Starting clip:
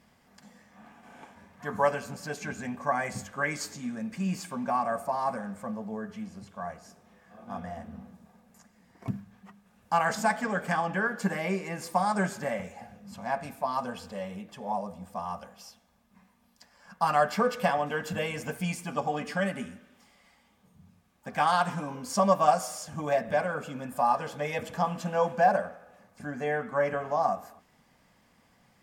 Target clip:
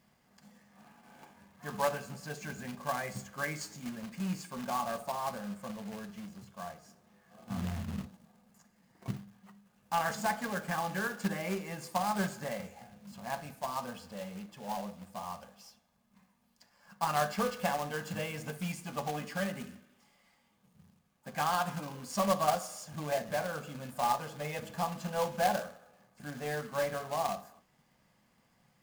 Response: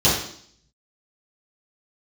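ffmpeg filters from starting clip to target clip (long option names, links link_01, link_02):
-filter_complex "[0:a]asplit=3[link_01][link_02][link_03];[link_01]afade=type=out:start_time=7.49:duration=0.02[link_04];[link_02]asubboost=boost=11:cutoff=150,afade=type=in:start_time=7.49:duration=0.02,afade=type=out:start_time=8.04:duration=0.02[link_05];[link_03]afade=type=in:start_time=8.04:duration=0.02[link_06];[link_04][link_05][link_06]amix=inputs=3:normalize=0,acrusher=bits=2:mode=log:mix=0:aa=0.000001,asplit=2[link_07][link_08];[1:a]atrim=start_sample=2205,atrim=end_sample=3528[link_09];[link_08][link_09]afir=irnorm=-1:irlink=0,volume=-30.5dB[link_10];[link_07][link_10]amix=inputs=2:normalize=0,volume=-7dB"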